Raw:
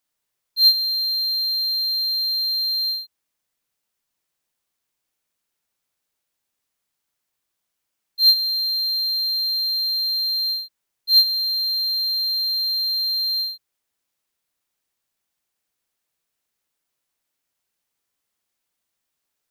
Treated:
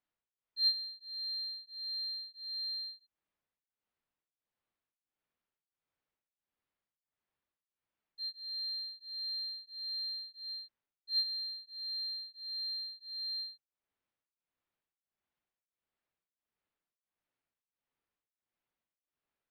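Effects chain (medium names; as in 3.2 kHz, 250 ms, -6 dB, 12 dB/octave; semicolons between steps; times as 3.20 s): distance through air 360 m; tremolo of two beating tones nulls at 1.5 Hz; trim -3.5 dB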